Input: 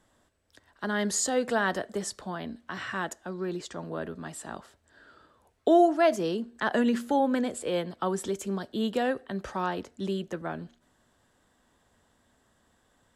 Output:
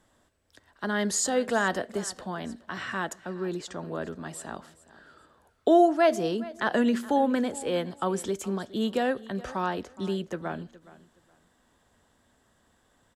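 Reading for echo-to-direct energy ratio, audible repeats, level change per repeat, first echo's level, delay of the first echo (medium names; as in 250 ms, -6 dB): -19.0 dB, 2, -13.0 dB, -19.0 dB, 418 ms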